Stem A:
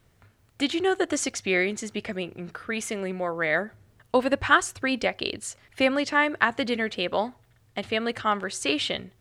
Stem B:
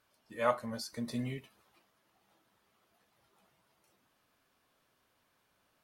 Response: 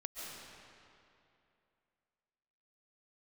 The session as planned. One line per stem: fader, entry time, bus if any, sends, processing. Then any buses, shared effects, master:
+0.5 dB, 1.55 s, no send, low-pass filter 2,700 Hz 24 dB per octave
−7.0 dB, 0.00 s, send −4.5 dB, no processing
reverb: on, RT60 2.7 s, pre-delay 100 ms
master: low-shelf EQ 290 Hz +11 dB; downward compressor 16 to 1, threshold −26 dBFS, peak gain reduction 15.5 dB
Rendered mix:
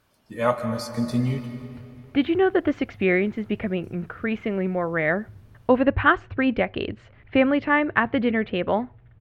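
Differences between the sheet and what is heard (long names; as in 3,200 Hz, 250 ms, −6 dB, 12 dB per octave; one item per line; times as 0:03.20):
stem B −7.0 dB → +3.5 dB
master: missing downward compressor 16 to 1, threshold −26 dBFS, peak gain reduction 15.5 dB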